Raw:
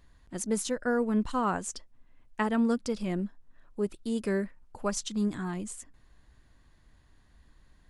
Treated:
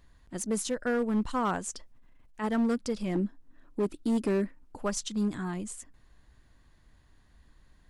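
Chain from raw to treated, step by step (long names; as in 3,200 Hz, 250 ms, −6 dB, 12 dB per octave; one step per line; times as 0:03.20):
0:01.75–0:02.44: transient designer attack −10 dB, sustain +4 dB
0:03.15–0:04.80: parametric band 290 Hz +13.5 dB 0.54 octaves
hard clipping −22.5 dBFS, distortion −16 dB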